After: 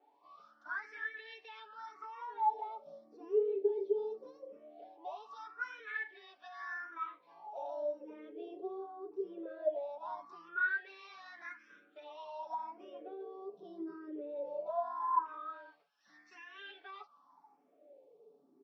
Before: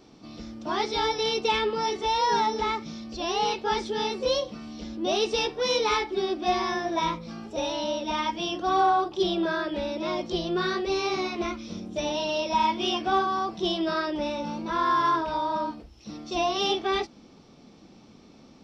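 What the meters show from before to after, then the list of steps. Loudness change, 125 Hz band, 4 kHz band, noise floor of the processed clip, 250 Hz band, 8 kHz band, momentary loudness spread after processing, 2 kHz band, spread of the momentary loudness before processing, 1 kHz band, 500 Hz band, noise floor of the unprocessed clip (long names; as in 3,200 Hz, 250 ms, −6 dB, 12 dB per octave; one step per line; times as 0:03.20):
−13.0 dB, below −35 dB, −30.0 dB, −70 dBFS, −19.5 dB, can't be measured, 19 LU, −7.5 dB, 10 LU, −14.5 dB, −11.0 dB, −52 dBFS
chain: high-pass filter 190 Hz 24 dB per octave
comb filter 7 ms, depth 69%
brickwall limiter −17 dBFS, peak gain reduction 7 dB
downward compressor 3 to 1, threshold −28 dBFS, peak gain reduction 6 dB
LFO wah 0.2 Hz 390–1,800 Hz, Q 21
frequency shifter mixed with the dry sound +0.84 Hz
level +10.5 dB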